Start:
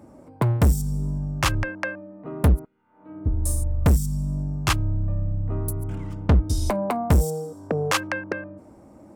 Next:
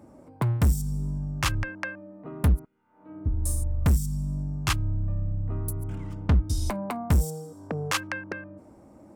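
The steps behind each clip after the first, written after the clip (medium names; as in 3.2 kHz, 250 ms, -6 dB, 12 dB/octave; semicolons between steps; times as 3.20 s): dynamic bell 530 Hz, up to -7 dB, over -38 dBFS, Q 0.9; trim -3 dB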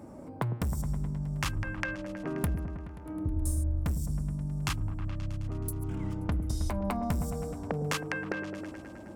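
compression 10:1, threshold -33 dBFS, peak gain reduction 15.5 dB; on a send: delay with an opening low-pass 106 ms, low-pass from 400 Hz, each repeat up 1 oct, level -6 dB; on the sum: trim +4 dB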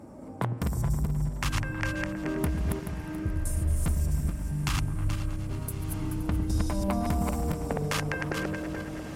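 backward echo that repeats 215 ms, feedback 44%, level -2 dB; echo that smears into a reverb 1245 ms, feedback 51%, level -14 dB; trim +1 dB; MP3 64 kbps 44.1 kHz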